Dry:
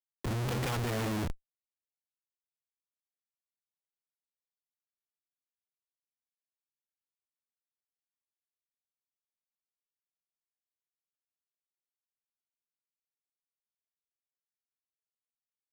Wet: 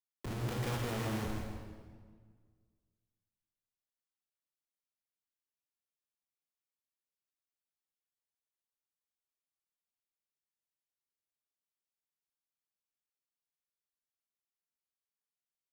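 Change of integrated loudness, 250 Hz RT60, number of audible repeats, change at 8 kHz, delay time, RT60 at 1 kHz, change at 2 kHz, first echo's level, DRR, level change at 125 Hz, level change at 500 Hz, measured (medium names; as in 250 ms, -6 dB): -4.5 dB, 2.0 s, 1, -4.0 dB, 164 ms, 1.6 s, -4.0 dB, -7.0 dB, 0.0 dB, -3.5 dB, -3.5 dB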